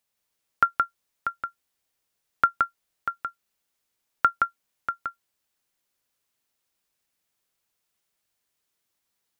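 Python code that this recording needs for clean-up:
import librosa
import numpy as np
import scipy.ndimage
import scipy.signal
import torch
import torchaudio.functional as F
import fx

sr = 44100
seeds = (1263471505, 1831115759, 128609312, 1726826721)

y = fx.fix_echo_inverse(x, sr, delay_ms=171, level_db=-3.5)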